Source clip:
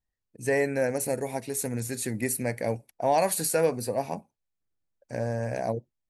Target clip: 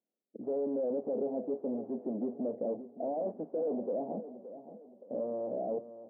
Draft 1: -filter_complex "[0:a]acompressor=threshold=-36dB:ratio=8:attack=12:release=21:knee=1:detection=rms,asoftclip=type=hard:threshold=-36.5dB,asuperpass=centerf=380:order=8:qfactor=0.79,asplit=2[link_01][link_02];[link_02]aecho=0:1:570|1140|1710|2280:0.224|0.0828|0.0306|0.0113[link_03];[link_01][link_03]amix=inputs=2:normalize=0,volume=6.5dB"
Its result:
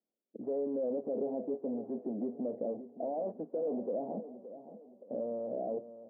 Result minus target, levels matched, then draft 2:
downward compressor: peak gain reduction +9 dB
-filter_complex "[0:a]acompressor=threshold=-25.5dB:ratio=8:attack=12:release=21:knee=1:detection=rms,asoftclip=type=hard:threshold=-36.5dB,asuperpass=centerf=380:order=8:qfactor=0.79,asplit=2[link_01][link_02];[link_02]aecho=0:1:570|1140|1710|2280:0.224|0.0828|0.0306|0.0113[link_03];[link_01][link_03]amix=inputs=2:normalize=0,volume=6.5dB"

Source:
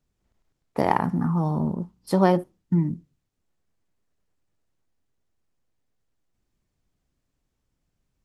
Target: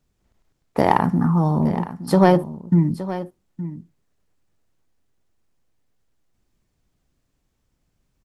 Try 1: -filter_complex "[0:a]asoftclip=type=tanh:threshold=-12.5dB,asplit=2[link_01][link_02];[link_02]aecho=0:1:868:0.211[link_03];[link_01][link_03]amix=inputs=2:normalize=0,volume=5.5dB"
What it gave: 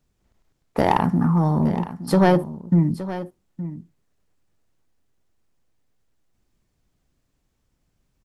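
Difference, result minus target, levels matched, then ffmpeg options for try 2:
soft clipping: distortion +10 dB
-filter_complex "[0:a]asoftclip=type=tanh:threshold=-5dB,asplit=2[link_01][link_02];[link_02]aecho=0:1:868:0.211[link_03];[link_01][link_03]amix=inputs=2:normalize=0,volume=5.5dB"

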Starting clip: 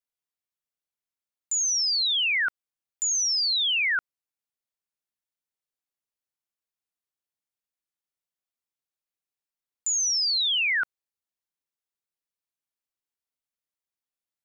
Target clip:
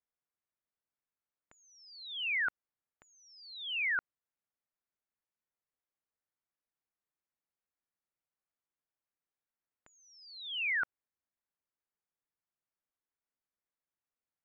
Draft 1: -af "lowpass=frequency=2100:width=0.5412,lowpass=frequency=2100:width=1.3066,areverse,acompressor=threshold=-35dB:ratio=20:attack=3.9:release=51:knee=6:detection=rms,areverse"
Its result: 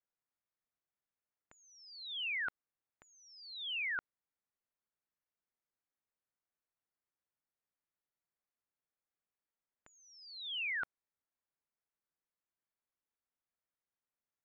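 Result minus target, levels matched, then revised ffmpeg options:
downward compressor: peak gain reduction +5.5 dB
-af "lowpass=frequency=2100:width=0.5412,lowpass=frequency=2100:width=1.3066,areverse,acompressor=threshold=-29dB:ratio=20:attack=3.9:release=51:knee=6:detection=rms,areverse"

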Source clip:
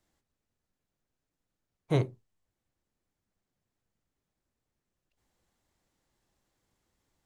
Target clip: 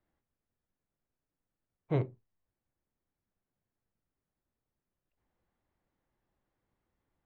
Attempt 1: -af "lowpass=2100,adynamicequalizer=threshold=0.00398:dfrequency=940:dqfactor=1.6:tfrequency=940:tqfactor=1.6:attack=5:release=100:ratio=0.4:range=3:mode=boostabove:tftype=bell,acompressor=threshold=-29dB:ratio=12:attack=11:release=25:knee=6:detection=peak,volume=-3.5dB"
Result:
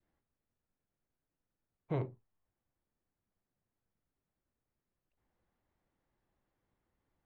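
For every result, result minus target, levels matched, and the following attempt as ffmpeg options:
downward compressor: peak gain reduction +7 dB; 1,000 Hz band +3.0 dB
-af "lowpass=2100,adynamicequalizer=threshold=0.00398:dfrequency=940:dqfactor=1.6:tfrequency=940:tqfactor=1.6:attack=5:release=100:ratio=0.4:range=3:mode=boostabove:tftype=bell,volume=-3.5dB"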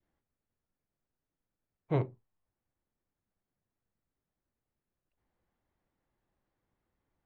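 1,000 Hz band +3.0 dB
-af "lowpass=2100,volume=-3.5dB"

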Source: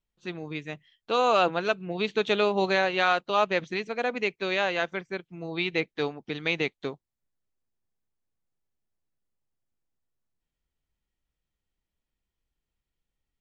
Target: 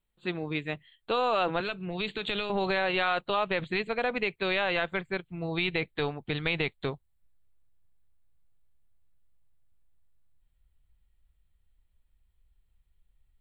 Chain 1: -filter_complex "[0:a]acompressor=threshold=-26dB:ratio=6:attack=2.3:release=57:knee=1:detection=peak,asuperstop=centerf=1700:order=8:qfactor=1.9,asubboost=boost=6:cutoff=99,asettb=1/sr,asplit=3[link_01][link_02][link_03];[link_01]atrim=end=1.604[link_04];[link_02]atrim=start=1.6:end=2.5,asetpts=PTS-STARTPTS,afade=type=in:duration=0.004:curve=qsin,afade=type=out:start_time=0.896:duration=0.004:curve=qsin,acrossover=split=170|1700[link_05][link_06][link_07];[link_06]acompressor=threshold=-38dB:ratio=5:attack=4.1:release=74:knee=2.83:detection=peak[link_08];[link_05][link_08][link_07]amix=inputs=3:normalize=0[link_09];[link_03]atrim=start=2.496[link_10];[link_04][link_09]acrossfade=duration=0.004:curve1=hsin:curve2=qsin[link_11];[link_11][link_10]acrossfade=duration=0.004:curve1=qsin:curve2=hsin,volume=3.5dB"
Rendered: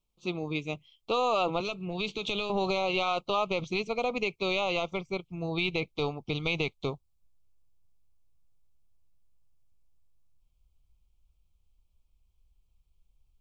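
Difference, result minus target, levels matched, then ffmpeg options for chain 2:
8,000 Hz band +15.5 dB
-filter_complex "[0:a]acompressor=threshold=-26dB:ratio=6:attack=2.3:release=57:knee=1:detection=peak,asuperstop=centerf=5700:order=8:qfactor=1.9,asubboost=boost=6:cutoff=99,asettb=1/sr,asplit=3[link_01][link_02][link_03];[link_01]atrim=end=1.604[link_04];[link_02]atrim=start=1.6:end=2.5,asetpts=PTS-STARTPTS,afade=type=in:duration=0.004:curve=qsin,afade=type=out:start_time=0.896:duration=0.004:curve=qsin,acrossover=split=170|1700[link_05][link_06][link_07];[link_06]acompressor=threshold=-38dB:ratio=5:attack=4.1:release=74:knee=2.83:detection=peak[link_08];[link_05][link_08][link_07]amix=inputs=3:normalize=0[link_09];[link_03]atrim=start=2.496[link_10];[link_04][link_09]acrossfade=duration=0.004:curve1=hsin:curve2=qsin[link_11];[link_11][link_10]acrossfade=duration=0.004:curve1=qsin:curve2=hsin,volume=3.5dB"

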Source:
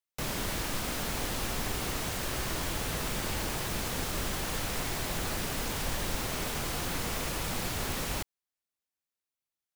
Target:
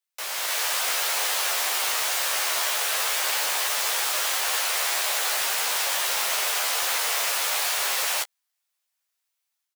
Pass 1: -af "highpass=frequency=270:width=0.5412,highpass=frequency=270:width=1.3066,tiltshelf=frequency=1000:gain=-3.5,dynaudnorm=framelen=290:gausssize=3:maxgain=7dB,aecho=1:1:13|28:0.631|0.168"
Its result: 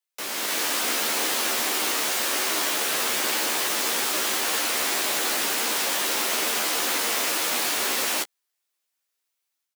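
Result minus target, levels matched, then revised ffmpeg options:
250 Hz band +18.5 dB
-af "highpass=frequency=560:width=0.5412,highpass=frequency=560:width=1.3066,tiltshelf=frequency=1000:gain=-3.5,dynaudnorm=framelen=290:gausssize=3:maxgain=7dB,aecho=1:1:13|28:0.631|0.168"

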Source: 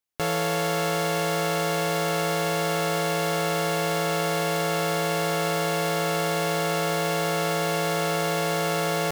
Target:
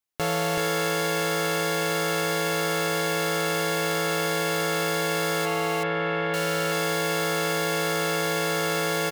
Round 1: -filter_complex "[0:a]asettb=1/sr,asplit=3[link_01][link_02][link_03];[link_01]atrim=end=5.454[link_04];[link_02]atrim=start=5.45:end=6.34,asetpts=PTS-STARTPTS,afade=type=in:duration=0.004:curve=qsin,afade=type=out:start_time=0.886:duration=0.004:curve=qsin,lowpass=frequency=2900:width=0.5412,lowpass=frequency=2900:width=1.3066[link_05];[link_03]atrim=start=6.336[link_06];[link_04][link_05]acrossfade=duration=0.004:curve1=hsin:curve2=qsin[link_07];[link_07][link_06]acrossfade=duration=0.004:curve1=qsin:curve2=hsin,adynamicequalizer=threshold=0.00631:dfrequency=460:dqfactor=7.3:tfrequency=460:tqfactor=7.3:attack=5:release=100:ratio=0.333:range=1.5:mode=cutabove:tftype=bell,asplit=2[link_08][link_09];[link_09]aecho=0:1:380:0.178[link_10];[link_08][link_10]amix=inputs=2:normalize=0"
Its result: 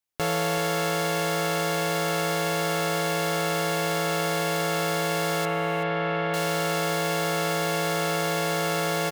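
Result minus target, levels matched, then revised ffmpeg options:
echo-to-direct −11 dB
-filter_complex "[0:a]asettb=1/sr,asplit=3[link_01][link_02][link_03];[link_01]atrim=end=5.454[link_04];[link_02]atrim=start=5.45:end=6.34,asetpts=PTS-STARTPTS,afade=type=in:duration=0.004:curve=qsin,afade=type=out:start_time=0.886:duration=0.004:curve=qsin,lowpass=frequency=2900:width=0.5412,lowpass=frequency=2900:width=1.3066[link_05];[link_03]atrim=start=6.336[link_06];[link_04][link_05]acrossfade=duration=0.004:curve1=hsin:curve2=qsin[link_07];[link_07][link_06]acrossfade=duration=0.004:curve1=qsin:curve2=hsin,adynamicequalizer=threshold=0.00631:dfrequency=460:dqfactor=7.3:tfrequency=460:tqfactor=7.3:attack=5:release=100:ratio=0.333:range=1.5:mode=cutabove:tftype=bell,asplit=2[link_08][link_09];[link_09]aecho=0:1:380:0.631[link_10];[link_08][link_10]amix=inputs=2:normalize=0"

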